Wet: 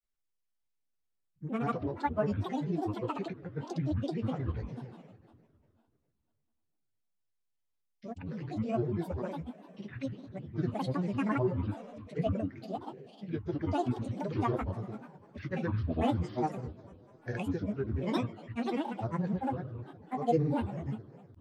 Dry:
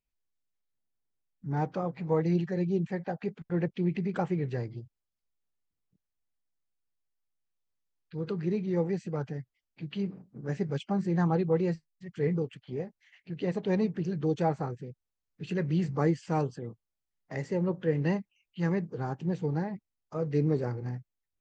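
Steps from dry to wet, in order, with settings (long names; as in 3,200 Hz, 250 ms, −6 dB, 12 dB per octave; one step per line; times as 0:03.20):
coupled-rooms reverb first 0.22 s, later 2.5 s, from −18 dB, DRR 2 dB
granular cloud 100 ms, grains 20 per second, pitch spread up and down by 12 semitones
level −3.5 dB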